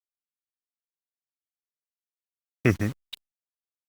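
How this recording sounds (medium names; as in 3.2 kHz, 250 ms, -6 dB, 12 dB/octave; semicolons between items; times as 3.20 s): tremolo saw up 0.79 Hz, depth 50%; a quantiser's noise floor 8-bit, dither none; Opus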